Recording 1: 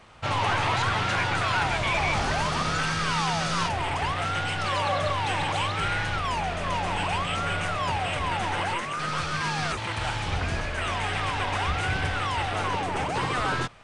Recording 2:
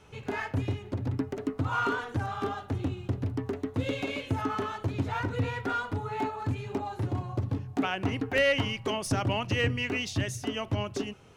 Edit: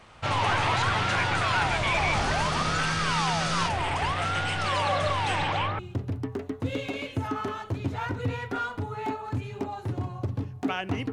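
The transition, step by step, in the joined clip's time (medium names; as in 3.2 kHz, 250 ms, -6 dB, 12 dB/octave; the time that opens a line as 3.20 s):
recording 1
5.35–5.79 s: low-pass 8.7 kHz -> 1.4 kHz
5.79 s: go over to recording 2 from 2.93 s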